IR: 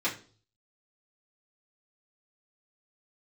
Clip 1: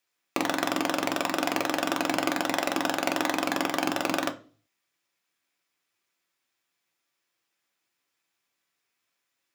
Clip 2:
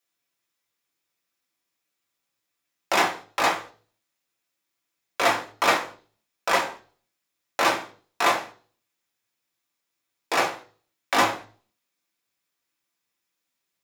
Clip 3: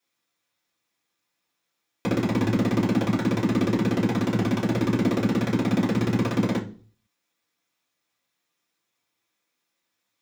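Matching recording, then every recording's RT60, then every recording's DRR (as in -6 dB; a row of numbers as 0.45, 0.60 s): 3; 0.40, 0.40, 0.40 s; 4.5, -1.0, -8.5 dB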